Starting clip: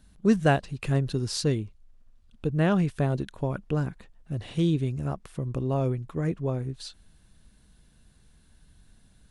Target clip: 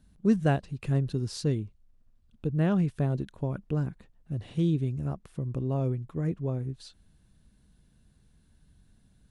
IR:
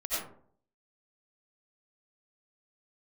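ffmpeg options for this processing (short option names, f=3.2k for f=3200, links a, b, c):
-af "equalizer=f=140:w=0.32:g=7,volume=-8dB"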